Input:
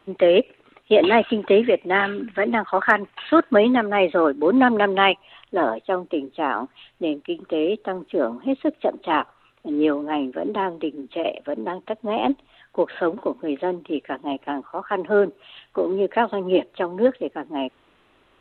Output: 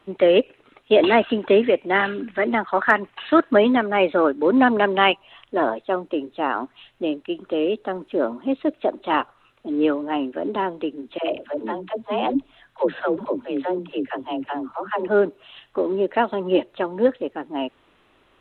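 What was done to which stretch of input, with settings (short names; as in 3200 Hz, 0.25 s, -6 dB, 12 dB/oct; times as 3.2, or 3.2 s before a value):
11.18–15.08 dispersion lows, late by 0.104 s, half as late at 360 Hz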